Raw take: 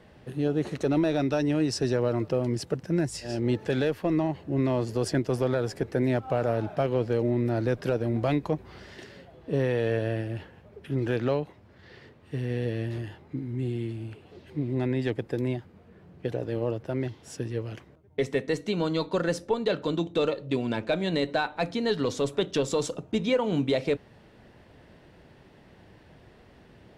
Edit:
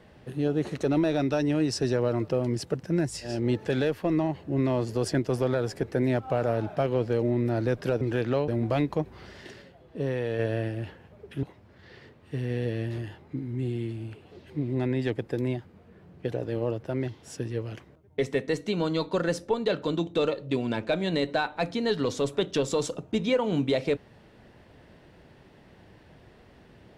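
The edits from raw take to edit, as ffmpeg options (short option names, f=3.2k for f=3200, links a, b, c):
-filter_complex "[0:a]asplit=6[a][b][c][d][e][f];[a]atrim=end=8.012[g];[b]atrim=start=10.958:end=11.432[h];[c]atrim=start=8.008:end=9.152[i];[d]atrim=start=9.148:end=9.922,asetpts=PTS-STARTPTS,volume=-3.5dB[j];[e]atrim=start=9.918:end=10.962[k];[f]atrim=start=11.428[l];[g][h]acrossfade=d=0.004:c1=hsin:c2=hsin[m];[m][i]acrossfade=d=0.004:c1=hsin:c2=hsin[n];[n][j]acrossfade=d=0.004:c1=hsin:c2=hsin[o];[o][k]acrossfade=d=0.004:c1=hsin:c2=hsin[p];[p][l]acrossfade=d=0.004:c1=hsin:c2=hsin"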